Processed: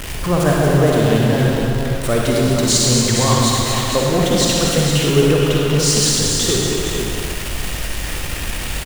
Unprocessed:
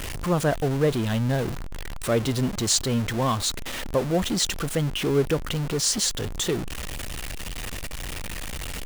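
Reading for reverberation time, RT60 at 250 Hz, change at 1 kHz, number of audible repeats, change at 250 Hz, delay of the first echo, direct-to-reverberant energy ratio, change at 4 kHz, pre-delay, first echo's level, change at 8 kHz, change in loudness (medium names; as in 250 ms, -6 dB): 1.8 s, 1.8 s, +9.5 dB, 2, +9.5 dB, 231 ms, -4.5 dB, +10.0 dB, 37 ms, -7.0 dB, +9.5 dB, +9.5 dB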